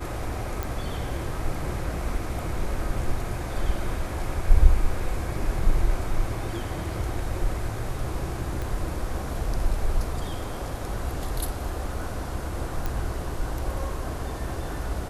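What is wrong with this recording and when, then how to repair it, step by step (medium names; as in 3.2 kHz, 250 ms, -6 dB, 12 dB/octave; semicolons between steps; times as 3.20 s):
0.63 s: pop
8.62 s: pop
12.86 s: pop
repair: de-click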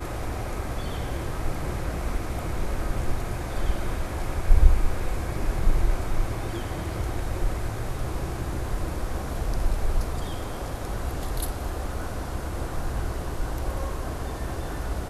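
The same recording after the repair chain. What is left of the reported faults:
8.62 s: pop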